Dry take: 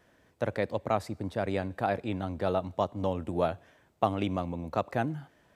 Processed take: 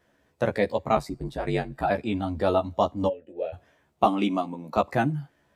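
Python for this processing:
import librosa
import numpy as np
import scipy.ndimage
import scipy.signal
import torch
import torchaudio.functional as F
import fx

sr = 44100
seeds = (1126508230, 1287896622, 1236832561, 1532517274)

y = fx.highpass(x, sr, hz=160.0, slope=24, at=(4.04, 4.77))
y = fx.noise_reduce_blind(y, sr, reduce_db=9)
y = fx.ring_mod(y, sr, carrier_hz=49.0, at=(0.95, 1.89), fade=0.02)
y = fx.vowel_filter(y, sr, vowel='e', at=(3.07, 3.52), fade=0.02)
y = fx.doubler(y, sr, ms=14.0, db=-4)
y = y * 10.0 ** (5.0 / 20.0)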